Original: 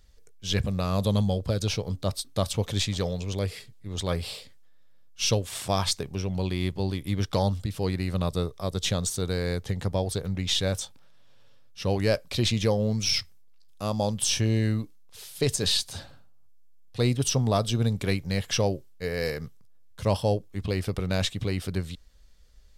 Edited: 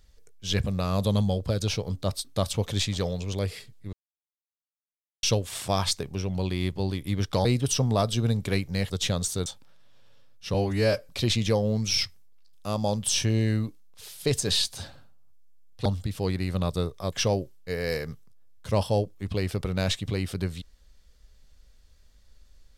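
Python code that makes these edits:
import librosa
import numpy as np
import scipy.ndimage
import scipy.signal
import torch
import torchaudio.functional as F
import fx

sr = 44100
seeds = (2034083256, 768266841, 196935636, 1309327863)

y = fx.edit(x, sr, fx.silence(start_s=3.93, length_s=1.3),
    fx.swap(start_s=7.45, length_s=1.27, other_s=17.01, other_length_s=1.45),
    fx.cut(start_s=9.28, length_s=1.52),
    fx.stretch_span(start_s=11.88, length_s=0.37, factor=1.5), tone=tone)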